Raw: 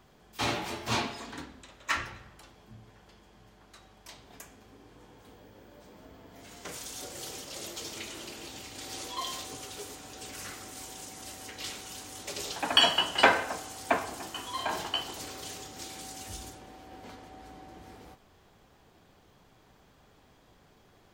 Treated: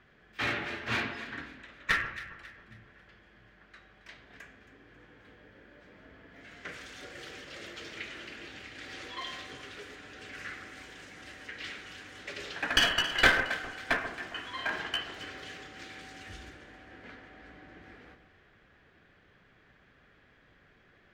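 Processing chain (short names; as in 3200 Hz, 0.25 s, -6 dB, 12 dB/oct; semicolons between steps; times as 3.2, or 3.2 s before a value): EQ curve 570 Hz 0 dB, 910 Hz -6 dB, 1700 Hz +12 dB, 11000 Hz -20 dB; one-sided clip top -22.5 dBFS; on a send: echo with dull and thin repeats by turns 0.136 s, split 1400 Hz, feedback 61%, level -10 dB; on the sum: gain -3.5 dB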